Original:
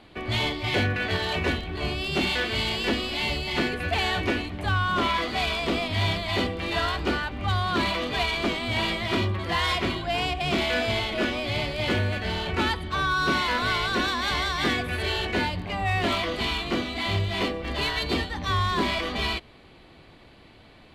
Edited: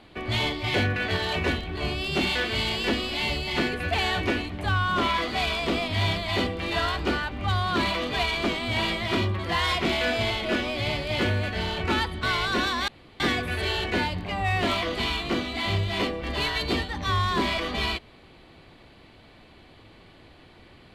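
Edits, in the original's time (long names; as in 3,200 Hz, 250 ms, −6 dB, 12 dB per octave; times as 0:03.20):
0:09.85–0:10.54: remove
0:12.92–0:13.64: remove
0:14.29–0:14.61: fill with room tone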